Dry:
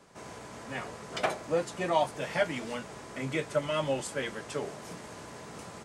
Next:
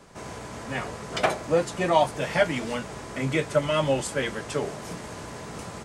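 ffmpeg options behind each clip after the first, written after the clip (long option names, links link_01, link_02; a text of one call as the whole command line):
ffmpeg -i in.wav -af "lowshelf=frequency=80:gain=10.5,volume=6dB" out.wav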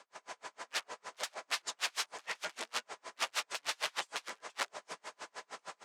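ffmpeg -i in.wav -af "aeval=exprs='(mod(16.8*val(0)+1,2)-1)/16.8':channel_layout=same,highpass=770,lowpass=7200,aeval=exprs='val(0)*pow(10,-39*(0.5-0.5*cos(2*PI*6.5*n/s))/20)':channel_layout=same,volume=1dB" out.wav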